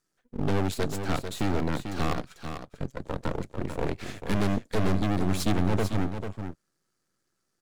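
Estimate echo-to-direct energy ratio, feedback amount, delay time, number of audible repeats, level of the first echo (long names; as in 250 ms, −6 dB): −8.0 dB, repeats not evenly spaced, 444 ms, 1, −8.0 dB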